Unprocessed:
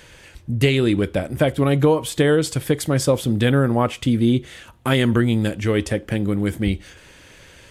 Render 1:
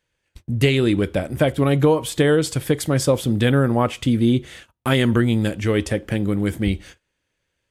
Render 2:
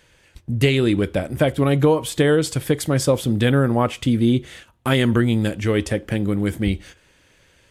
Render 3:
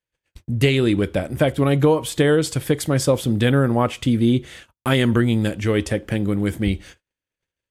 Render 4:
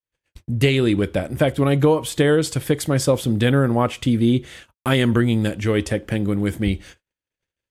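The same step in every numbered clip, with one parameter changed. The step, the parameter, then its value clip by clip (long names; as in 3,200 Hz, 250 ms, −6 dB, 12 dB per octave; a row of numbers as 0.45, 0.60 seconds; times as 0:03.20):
noise gate, range: −29, −10, −44, −58 decibels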